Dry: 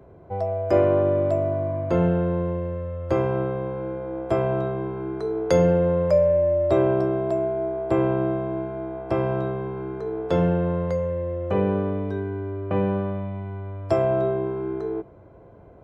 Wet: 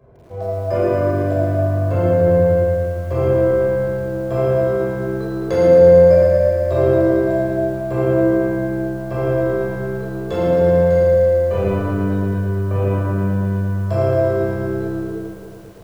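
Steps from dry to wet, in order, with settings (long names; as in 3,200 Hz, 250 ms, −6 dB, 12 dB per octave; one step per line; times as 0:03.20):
0:10.15–0:11.94: high-shelf EQ 4,100 Hz +10.5 dB
convolution reverb RT60 1.5 s, pre-delay 15 ms, DRR −6.5 dB
feedback echo at a low word length 113 ms, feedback 80%, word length 7 bits, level −5 dB
level −7.5 dB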